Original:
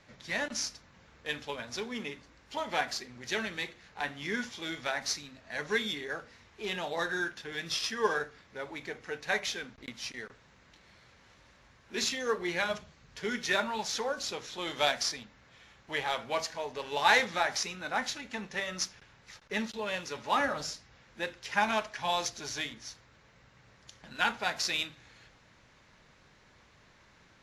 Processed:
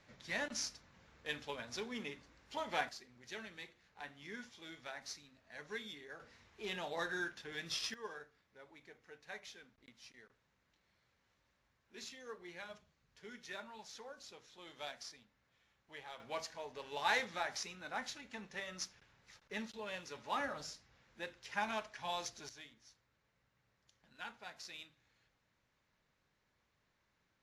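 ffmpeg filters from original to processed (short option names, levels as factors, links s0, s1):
-af "asetnsamples=n=441:p=0,asendcmd='2.89 volume volume -14.5dB;6.2 volume volume -7dB;7.94 volume volume -18.5dB;16.2 volume volume -10dB;22.49 volume volume -19dB',volume=0.501"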